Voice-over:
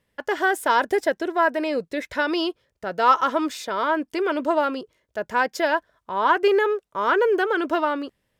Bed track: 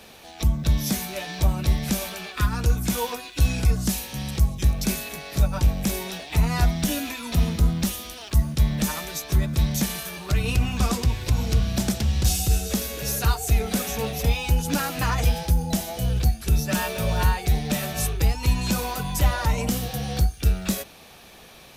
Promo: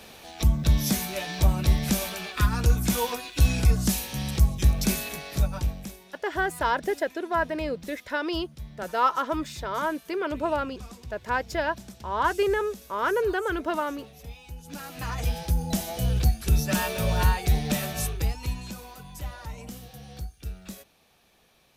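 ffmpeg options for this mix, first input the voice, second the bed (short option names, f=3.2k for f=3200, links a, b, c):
-filter_complex "[0:a]adelay=5950,volume=-5.5dB[a];[1:a]volume=19dB,afade=t=out:st=5.08:d=0.89:silence=0.1,afade=t=in:st=14.61:d=1.39:silence=0.112202,afade=t=out:st=17.69:d=1.06:silence=0.188365[b];[a][b]amix=inputs=2:normalize=0"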